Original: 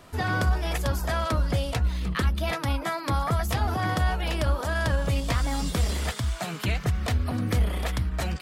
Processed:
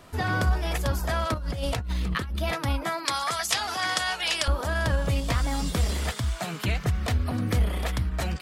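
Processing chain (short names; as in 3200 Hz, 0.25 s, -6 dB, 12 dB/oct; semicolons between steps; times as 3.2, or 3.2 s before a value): 1.34–2.36 negative-ratio compressor -29 dBFS, ratio -1; 3.05–4.48 weighting filter ITU-R 468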